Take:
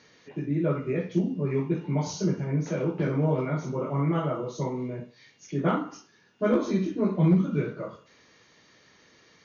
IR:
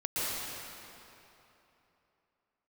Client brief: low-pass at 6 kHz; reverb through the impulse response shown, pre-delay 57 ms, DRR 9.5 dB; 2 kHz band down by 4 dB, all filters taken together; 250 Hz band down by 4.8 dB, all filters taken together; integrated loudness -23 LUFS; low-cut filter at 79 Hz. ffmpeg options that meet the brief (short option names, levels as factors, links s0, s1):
-filter_complex "[0:a]highpass=79,lowpass=6000,equalizer=f=250:t=o:g=-7.5,equalizer=f=2000:t=o:g=-5.5,asplit=2[s0][s1];[1:a]atrim=start_sample=2205,adelay=57[s2];[s1][s2]afir=irnorm=-1:irlink=0,volume=0.126[s3];[s0][s3]amix=inputs=2:normalize=0,volume=2.51"